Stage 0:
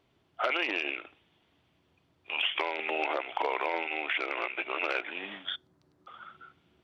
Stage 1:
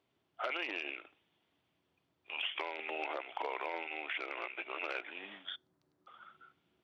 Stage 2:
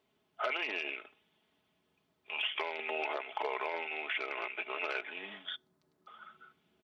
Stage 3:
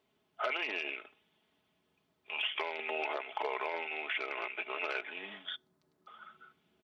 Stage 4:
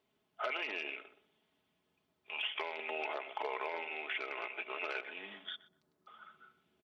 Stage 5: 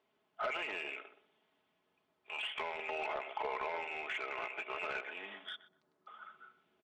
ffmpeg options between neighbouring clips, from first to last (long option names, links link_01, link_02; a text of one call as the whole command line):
ffmpeg -i in.wav -af "highpass=frequency=150:poles=1,volume=-8dB" out.wav
ffmpeg -i in.wav -af "aecho=1:1:4.7:0.52,volume=2dB" out.wav
ffmpeg -i in.wav -af anull out.wav
ffmpeg -i in.wav -filter_complex "[0:a]asplit=2[link_01][link_02];[link_02]adelay=123,lowpass=frequency=940:poles=1,volume=-11dB,asplit=2[link_03][link_04];[link_04]adelay=123,lowpass=frequency=940:poles=1,volume=0.36,asplit=2[link_05][link_06];[link_06]adelay=123,lowpass=frequency=940:poles=1,volume=0.36,asplit=2[link_07][link_08];[link_08]adelay=123,lowpass=frequency=940:poles=1,volume=0.36[link_09];[link_01][link_03][link_05][link_07][link_09]amix=inputs=5:normalize=0,volume=-3dB" out.wav
ffmpeg -i in.wav -filter_complex "[0:a]asplit=2[link_01][link_02];[link_02]highpass=frequency=720:poles=1,volume=14dB,asoftclip=type=tanh:threshold=-22dB[link_03];[link_01][link_03]amix=inputs=2:normalize=0,lowpass=frequency=1500:poles=1,volume=-6dB,volume=-2.5dB" out.wav